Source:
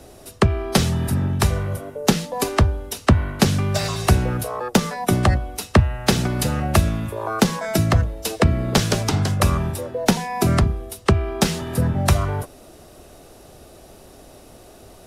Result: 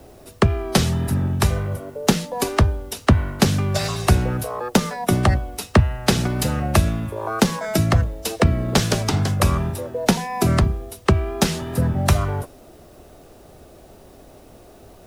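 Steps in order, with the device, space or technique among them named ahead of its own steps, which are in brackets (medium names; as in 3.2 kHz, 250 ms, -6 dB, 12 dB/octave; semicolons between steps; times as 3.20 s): plain cassette with noise reduction switched in (tape noise reduction on one side only decoder only; wow and flutter 29 cents; white noise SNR 39 dB)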